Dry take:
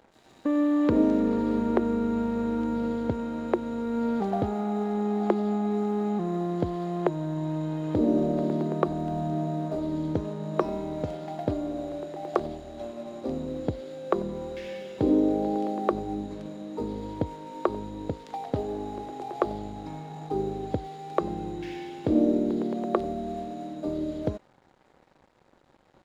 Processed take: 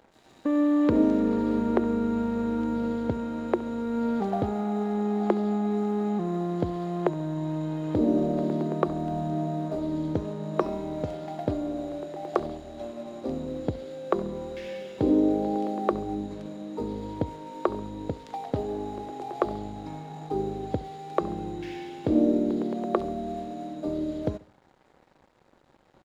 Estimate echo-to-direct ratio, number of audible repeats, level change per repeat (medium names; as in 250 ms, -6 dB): -19.0 dB, 2, -7.5 dB